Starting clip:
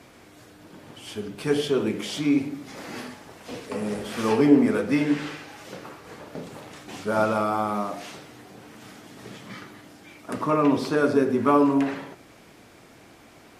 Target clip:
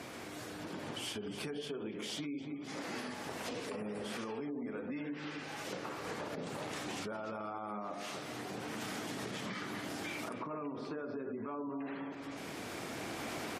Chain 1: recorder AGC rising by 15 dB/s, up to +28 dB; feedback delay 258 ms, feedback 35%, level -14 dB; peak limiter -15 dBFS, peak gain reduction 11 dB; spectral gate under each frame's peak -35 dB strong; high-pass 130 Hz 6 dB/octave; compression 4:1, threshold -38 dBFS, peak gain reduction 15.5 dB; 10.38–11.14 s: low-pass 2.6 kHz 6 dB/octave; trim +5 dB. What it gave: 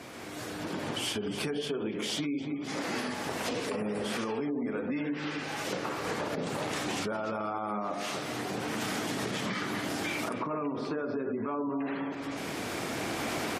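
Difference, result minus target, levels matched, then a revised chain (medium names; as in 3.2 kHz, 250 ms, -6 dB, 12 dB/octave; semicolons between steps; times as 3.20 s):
compression: peak gain reduction -8 dB
recorder AGC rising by 15 dB/s, up to +28 dB; feedback delay 258 ms, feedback 35%, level -14 dB; peak limiter -15 dBFS, peak gain reduction 11 dB; spectral gate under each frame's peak -35 dB strong; high-pass 130 Hz 6 dB/octave; compression 4:1, threshold -48.5 dBFS, peak gain reduction 23.5 dB; 10.38–11.14 s: low-pass 2.6 kHz 6 dB/octave; trim +5 dB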